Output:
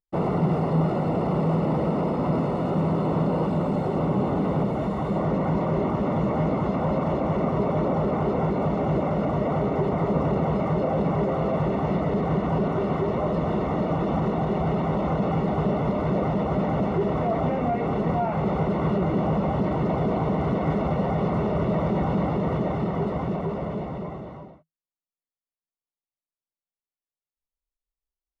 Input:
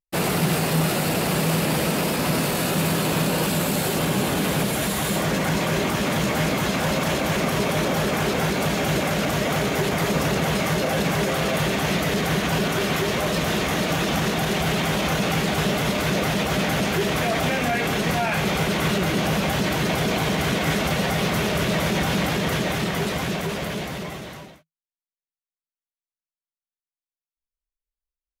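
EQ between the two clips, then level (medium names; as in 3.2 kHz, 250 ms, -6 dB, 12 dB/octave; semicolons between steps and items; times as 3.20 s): Savitzky-Golay filter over 65 samples; distance through air 53 m; 0.0 dB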